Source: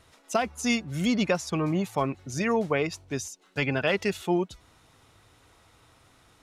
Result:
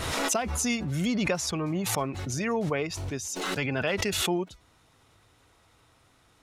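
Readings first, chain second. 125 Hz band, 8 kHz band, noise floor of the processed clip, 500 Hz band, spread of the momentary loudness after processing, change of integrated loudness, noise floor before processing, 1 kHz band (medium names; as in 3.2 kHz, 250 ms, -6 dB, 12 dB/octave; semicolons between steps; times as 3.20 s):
+0.5 dB, +7.0 dB, -63 dBFS, -2.5 dB, 5 LU, -1.0 dB, -60 dBFS, -1.5 dB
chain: swell ahead of each attack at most 24 dB/s; trim -3.5 dB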